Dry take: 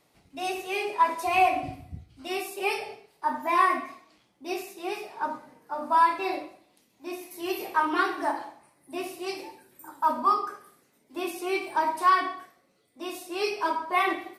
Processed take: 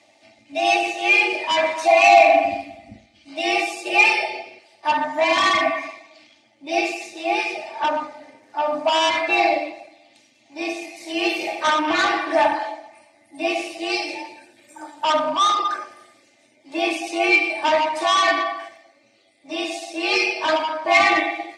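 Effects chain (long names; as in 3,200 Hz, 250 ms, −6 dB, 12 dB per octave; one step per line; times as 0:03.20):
spectral magnitudes quantised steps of 15 dB
dynamic equaliser 1,300 Hz, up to +6 dB, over −37 dBFS, Q 1.1
mid-hump overdrive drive 21 dB, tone 5,600 Hz, clips at −4.5 dBFS
loudspeaker in its box 180–8,100 Hz, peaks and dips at 180 Hz +9 dB, 440 Hz −5 dB, 700 Hz +7 dB, 1,000 Hz −10 dB, 1,400 Hz −10 dB, 2,300 Hz +5 dB
time stretch by overlap-add 1.5×, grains 20 ms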